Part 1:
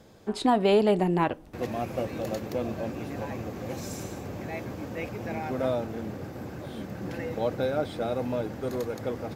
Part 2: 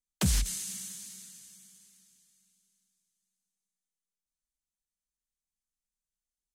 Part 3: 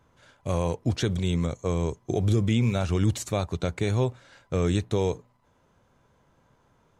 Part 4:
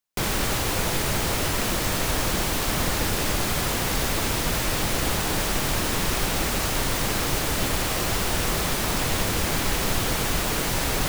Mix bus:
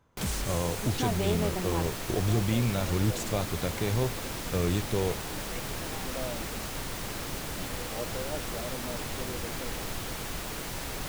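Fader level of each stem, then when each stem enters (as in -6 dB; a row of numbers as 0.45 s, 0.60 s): -10.0 dB, -6.5 dB, -4.0 dB, -11.5 dB; 0.55 s, 0.00 s, 0.00 s, 0.00 s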